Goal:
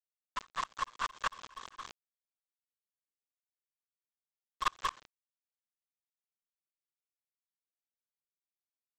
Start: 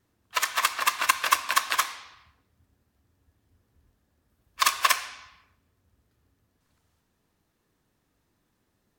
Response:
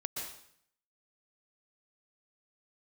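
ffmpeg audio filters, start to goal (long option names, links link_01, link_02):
-af "highpass=frequency=350:width=0.5412,highpass=frequency=350:width=1.3066,equalizer=frequency=390:width_type=q:width=4:gain=-8,equalizer=frequency=670:width_type=q:width=4:gain=-7,equalizer=frequency=1100:width_type=q:width=4:gain=7,equalizer=frequency=2300:width_type=q:width=4:gain=-10,lowpass=frequency=3300:width=0.5412,lowpass=frequency=3300:width=1.3066,aresample=16000,aeval=exprs='val(0)*gte(abs(val(0)),0.0335)':channel_layout=same,aresample=44100,aeval=exprs='(tanh(11.2*val(0)+0.2)-tanh(0.2))/11.2':channel_layout=same,aeval=exprs='val(0)*pow(10,-33*if(lt(mod(-4.7*n/s,1),2*abs(-4.7)/1000),1-mod(-4.7*n/s,1)/(2*abs(-4.7)/1000),(mod(-4.7*n/s,1)-2*abs(-4.7)/1000)/(1-2*abs(-4.7)/1000))/20)':channel_layout=same"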